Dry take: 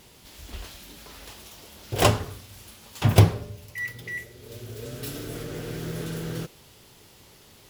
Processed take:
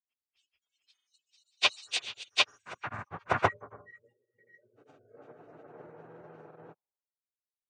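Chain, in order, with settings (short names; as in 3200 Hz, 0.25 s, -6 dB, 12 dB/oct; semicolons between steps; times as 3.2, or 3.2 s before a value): nonlinear frequency compression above 1800 Hz 1.5:1; spectral noise reduction 28 dB; band-pass sweep 4500 Hz -> 810 Hz, 1.63–3.78; grains, spray 0.477 s, pitch spread up and down by 0 st; three-band expander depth 100%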